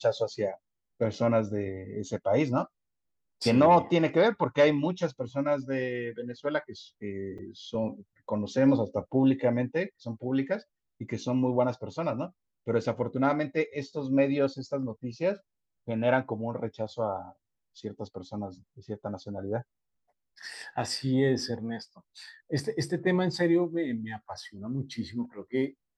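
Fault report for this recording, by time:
7.38–7.39 s: dropout 5.7 ms

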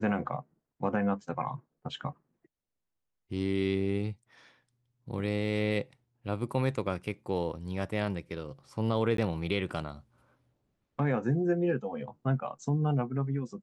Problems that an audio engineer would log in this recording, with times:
9.17–9.18 s: dropout 13 ms

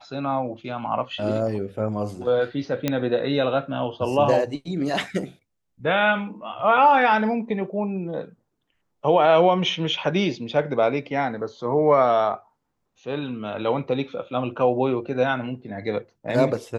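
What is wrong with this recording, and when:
2.88 s: pop -8 dBFS

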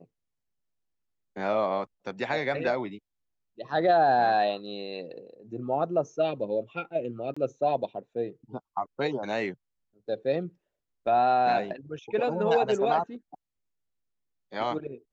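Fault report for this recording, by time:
7.34–7.37 s: dropout 25 ms

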